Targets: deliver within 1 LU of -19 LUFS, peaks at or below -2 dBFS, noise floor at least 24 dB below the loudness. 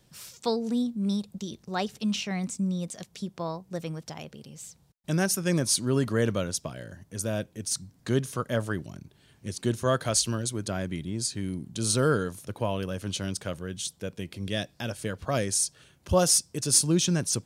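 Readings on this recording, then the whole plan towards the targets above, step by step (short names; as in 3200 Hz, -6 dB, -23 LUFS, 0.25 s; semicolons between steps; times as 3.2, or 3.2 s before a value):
loudness -28.5 LUFS; peak -9.5 dBFS; loudness target -19.0 LUFS
-> gain +9.5 dB; limiter -2 dBFS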